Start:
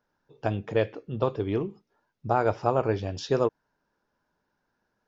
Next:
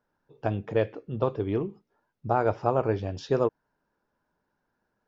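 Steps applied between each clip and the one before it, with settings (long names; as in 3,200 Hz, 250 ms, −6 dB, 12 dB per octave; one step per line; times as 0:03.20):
high-shelf EQ 2,900 Hz −8 dB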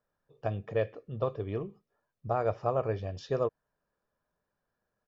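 comb filter 1.7 ms, depth 45%
level −6 dB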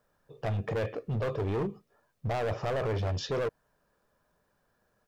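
in parallel at +3 dB: compressor whose output falls as the input rises −35 dBFS, ratio −1
on the sum: gain into a clipping stage and back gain 27 dB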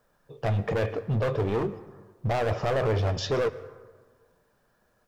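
flanger 1.2 Hz, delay 2.4 ms, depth 6.9 ms, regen −66%
dense smooth reverb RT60 1.5 s, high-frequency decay 0.45×, pre-delay 95 ms, DRR 16 dB
level +9 dB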